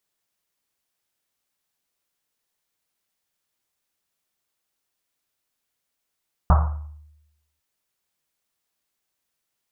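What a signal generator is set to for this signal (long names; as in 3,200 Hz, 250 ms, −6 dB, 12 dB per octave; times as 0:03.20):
drum after Risset, pitch 75 Hz, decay 0.95 s, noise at 960 Hz, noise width 680 Hz, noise 25%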